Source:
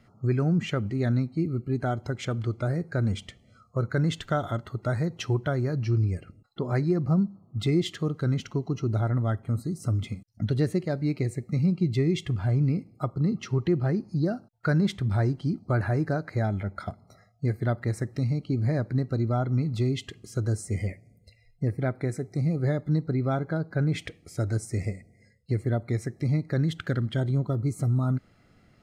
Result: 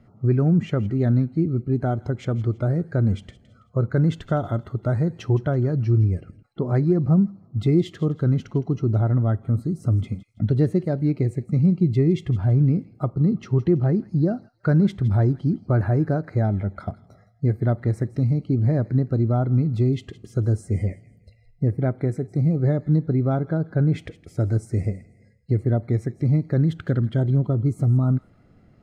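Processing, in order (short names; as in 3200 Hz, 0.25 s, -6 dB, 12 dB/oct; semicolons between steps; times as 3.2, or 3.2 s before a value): tilt shelf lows +7 dB, about 1300 Hz; on a send: thin delay 0.164 s, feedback 32%, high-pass 2000 Hz, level -15 dB; on the sum: gain -1 dB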